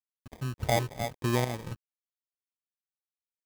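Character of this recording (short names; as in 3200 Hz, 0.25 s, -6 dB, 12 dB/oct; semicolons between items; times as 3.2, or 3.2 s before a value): chopped level 1.8 Hz, depth 60%, duty 60%; a quantiser's noise floor 8-bit, dither none; phasing stages 12, 0.84 Hz, lowest notch 250–1100 Hz; aliases and images of a low sample rate 1400 Hz, jitter 0%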